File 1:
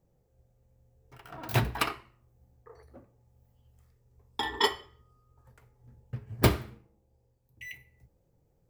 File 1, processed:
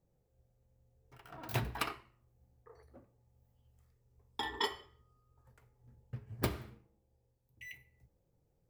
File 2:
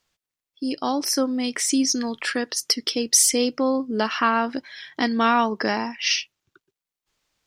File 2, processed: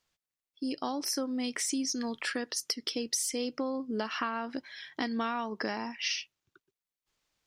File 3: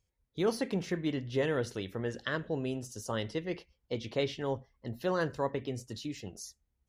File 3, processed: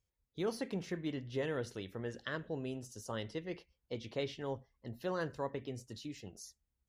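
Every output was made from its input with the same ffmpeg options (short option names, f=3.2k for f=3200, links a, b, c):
-af "acompressor=threshold=-23dB:ratio=6,volume=-6dB"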